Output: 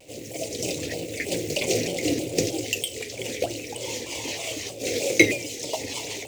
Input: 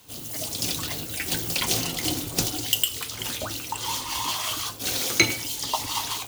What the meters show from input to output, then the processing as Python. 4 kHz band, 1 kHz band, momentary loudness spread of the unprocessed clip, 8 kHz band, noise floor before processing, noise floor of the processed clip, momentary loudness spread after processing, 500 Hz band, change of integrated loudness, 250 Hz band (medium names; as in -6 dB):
-4.5 dB, -8.0 dB, 8 LU, -2.5 dB, -37 dBFS, -38 dBFS, 11 LU, +10.0 dB, -1.0 dB, +5.5 dB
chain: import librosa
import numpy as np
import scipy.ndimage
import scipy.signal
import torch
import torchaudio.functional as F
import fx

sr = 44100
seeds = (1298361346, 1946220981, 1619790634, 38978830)

p1 = scipy.signal.sosfilt(scipy.signal.butter(2, 78.0, 'highpass', fs=sr, output='sos'), x)
p2 = fx.hum_notches(p1, sr, base_hz=50, count=5)
p3 = fx.dmg_crackle(p2, sr, seeds[0], per_s=440.0, level_db=-38.0)
p4 = fx.curve_eq(p3, sr, hz=(220.0, 530.0, 1100.0, 2000.0, 3100.0, 7400.0, 11000.0), db=(0, 14, -18, -6, -20, -10, -23))
p5 = fx.quant_companded(p4, sr, bits=4)
p6 = p4 + (p5 * 10.0 ** (-9.0 / 20.0))
p7 = fx.high_shelf_res(p6, sr, hz=1900.0, db=8.5, q=3.0)
p8 = fx.vibrato_shape(p7, sr, shape='saw_down', rate_hz=3.2, depth_cents=160.0)
y = p8 * 10.0 ** (-2.0 / 20.0)